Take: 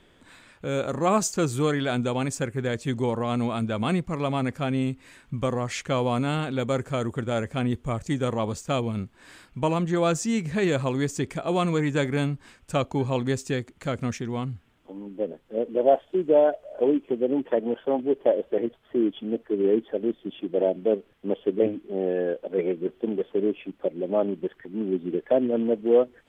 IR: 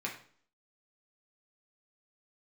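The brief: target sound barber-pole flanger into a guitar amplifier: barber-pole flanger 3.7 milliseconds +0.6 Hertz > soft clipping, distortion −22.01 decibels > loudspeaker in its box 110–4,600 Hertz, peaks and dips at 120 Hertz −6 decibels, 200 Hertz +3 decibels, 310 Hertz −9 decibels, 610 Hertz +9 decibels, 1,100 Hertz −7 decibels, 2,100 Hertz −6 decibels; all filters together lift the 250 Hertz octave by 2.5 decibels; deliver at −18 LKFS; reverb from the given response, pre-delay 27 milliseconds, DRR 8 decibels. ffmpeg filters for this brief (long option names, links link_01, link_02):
-filter_complex "[0:a]equalizer=frequency=250:width_type=o:gain=6,asplit=2[link_01][link_02];[1:a]atrim=start_sample=2205,adelay=27[link_03];[link_02][link_03]afir=irnorm=-1:irlink=0,volume=-11dB[link_04];[link_01][link_04]amix=inputs=2:normalize=0,asplit=2[link_05][link_06];[link_06]adelay=3.7,afreqshift=0.6[link_07];[link_05][link_07]amix=inputs=2:normalize=1,asoftclip=threshold=-13dB,highpass=110,equalizer=frequency=120:width_type=q:width=4:gain=-6,equalizer=frequency=200:width_type=q:width=4:gain=3,equalizer=frequency=310:width_type=q:width=4:gain=-9,equalizer=frequency=610:width_type=q:width=4:gain=9,equalizer=frequency=1100:width_type=q:width=4:gain=-7,equalizer=frequency=2100:width_type=q:width=4:gain=-6,lowpass=frequency=4600:width=0.5412,lowpass=frequency=4600:width=1.3066,volume=8.5dB"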